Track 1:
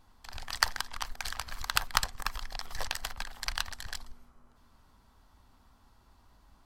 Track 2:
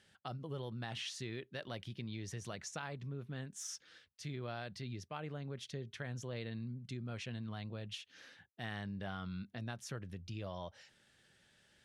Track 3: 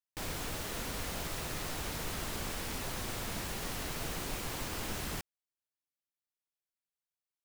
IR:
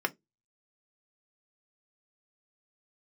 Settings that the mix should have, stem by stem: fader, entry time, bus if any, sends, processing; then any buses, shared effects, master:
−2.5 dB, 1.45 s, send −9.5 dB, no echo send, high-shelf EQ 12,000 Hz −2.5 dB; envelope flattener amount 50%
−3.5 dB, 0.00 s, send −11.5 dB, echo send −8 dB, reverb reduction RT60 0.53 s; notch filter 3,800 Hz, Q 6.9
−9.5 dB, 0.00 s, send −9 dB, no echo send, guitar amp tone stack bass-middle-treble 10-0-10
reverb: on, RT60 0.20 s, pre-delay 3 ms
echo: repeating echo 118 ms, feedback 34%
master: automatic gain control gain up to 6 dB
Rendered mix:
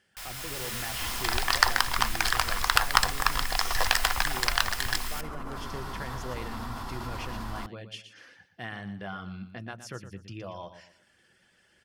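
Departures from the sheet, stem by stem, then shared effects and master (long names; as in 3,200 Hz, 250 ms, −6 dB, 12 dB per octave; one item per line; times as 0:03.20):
stem 1: entry 1.45 s → 1.00 s
stem 3 −9.5 dB → −0.5 dB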